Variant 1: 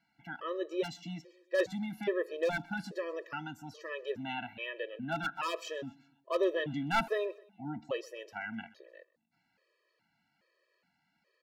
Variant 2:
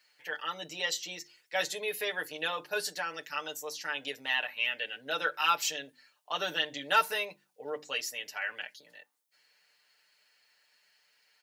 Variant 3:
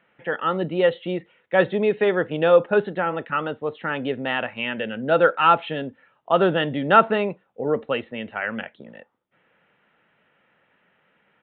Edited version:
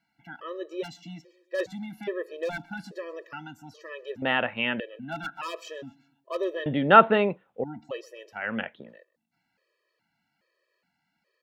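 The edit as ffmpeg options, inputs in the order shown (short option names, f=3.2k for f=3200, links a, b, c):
-filter_complex "[2:a]asplit=3[a][b][c];[0:a]asplit=4[d][e][f][g];[d]atrim=end=4.222[h];[a]atrim=start=4.218:end=4.802[i];[e]atrim=start=4.798:end=6.662[j];[b]atrim=start=6.658:end=7.642[k];[f]atrim=start=7.638:end=8.57[l];[c]atrim=start=8.33:end=8.99[m];[g]atrim=start=8.75[n];[h][i]acrossfade=d=0.004:c1=hsin:c2=hsin[o];[o][j]acrossfade=d=0.004:c1=hsin:c2=hsin[p];[p][k]acrossfade=d=0.004:c1=hsin:c2=hsin[q];[q][l]acrossfade=d=0.004:c1=hsin:c2=hsin[r];[r][m]acrossfade=d=0.24:c1=tri:c2=tri[s];[s][n]acrossfade=d=0.24:c1=tri:c2=tri"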